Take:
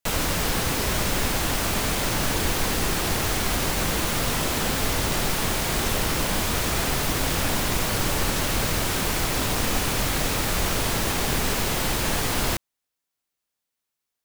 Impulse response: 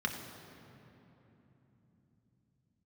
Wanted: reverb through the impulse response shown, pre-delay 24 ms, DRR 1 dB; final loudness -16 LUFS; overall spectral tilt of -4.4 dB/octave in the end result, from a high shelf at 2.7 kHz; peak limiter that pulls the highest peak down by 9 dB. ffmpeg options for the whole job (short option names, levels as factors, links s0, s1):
-filter_complex "[0:a]highshelf=f=2700:g=-5.5,alimiter=limit=0.1:level=0:latency=1,asplit=2[s0][s1];[1:a]atrim=start_sample=2205,adelay=24[s2];[s1][s2]afir=irnorm=-1:irlink=0,volume=0.473[s3];[s0][s3]amix=inputs=2:normalize=0,volume=3.55"